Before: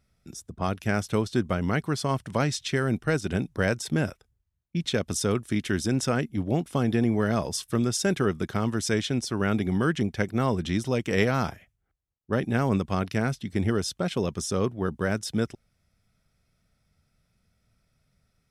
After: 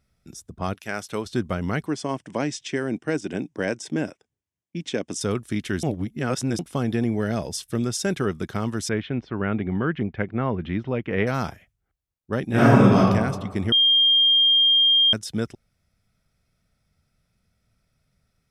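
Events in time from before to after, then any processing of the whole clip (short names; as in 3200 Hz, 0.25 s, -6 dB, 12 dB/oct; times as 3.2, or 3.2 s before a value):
0.73–1.25 HPF 830 Hz -> 310 Hz 6 dB/oct
1.86–5.21 speaker cabinet 200–8600 Hz, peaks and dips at 300 Hz +6 dB, 1300 Hz -7 dB, 4100 Hz -9 dB
5.83–6.59 reverse
7.1–7.83 bell 1100 Hz -6.5 dB 0.53 oct
8.89–11.27 LPF 2700 Hz 24 dB/oct
12.47–12.97 reverb throw, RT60 1.4 s, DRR -10.5 dB
13.72–15.13 bleep 3210 Hz -14 dBFS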